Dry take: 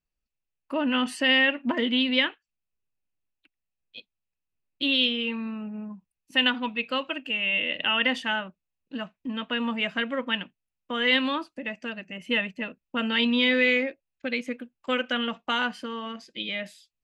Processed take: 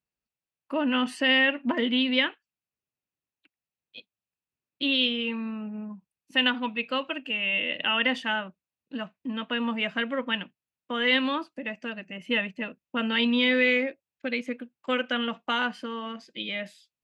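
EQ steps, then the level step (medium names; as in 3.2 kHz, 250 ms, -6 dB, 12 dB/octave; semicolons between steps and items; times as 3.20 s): high-pass 95 Hz; treble shelf 5.5 kHz -6.5 dB; 0.0 dB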